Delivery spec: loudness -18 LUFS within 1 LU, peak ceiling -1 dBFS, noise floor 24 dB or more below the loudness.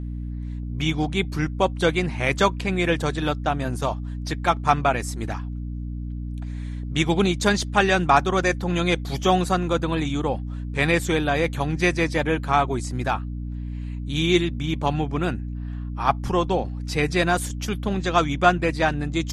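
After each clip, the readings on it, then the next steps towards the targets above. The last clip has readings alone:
hum 60 Hz; highest harmonic 300 Hz; hum level -28 dBFS; loudness -23.5 LUFS; peak level -3.5 dBFS; loudness target -18.0 LUFS
-> de-hum 60 Hz, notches 5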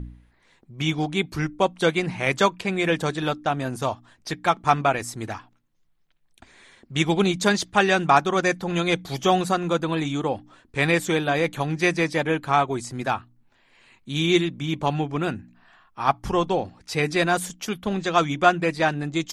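hum not found; loudness -23.5 LUFS; peak level -4.0 dBFS; loudness target -18.0 LUFS
-> trim +5.5 dB; peak limiter -1 dBFS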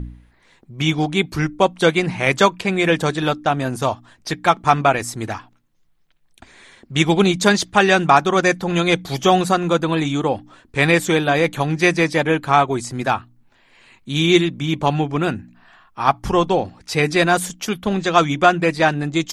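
loudness -18.0 LUFS; peak level -1.0 dBFS; noise floor -57 dBFS

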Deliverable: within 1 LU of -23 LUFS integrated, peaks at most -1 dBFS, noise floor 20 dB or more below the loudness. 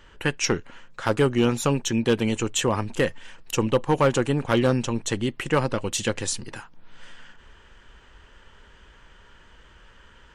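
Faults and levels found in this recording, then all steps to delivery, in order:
clipped samples 0.3%; clipping level -12.0 dBFS; loudness -24.5 LUFS; peak level -12.0 dBFS; loudness target -23.0 LUFS
-> clip repair -12 dBFS; trim +1.5 dB

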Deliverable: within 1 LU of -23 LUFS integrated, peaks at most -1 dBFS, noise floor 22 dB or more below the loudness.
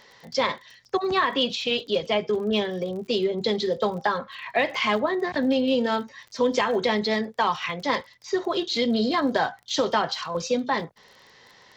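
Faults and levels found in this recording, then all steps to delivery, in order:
tick rate 28 per s; loudness -25.0 LUFS; peak level -9.0 dBFS; loudness target -23.0 LUFS
-> de-click; trim +2 dB

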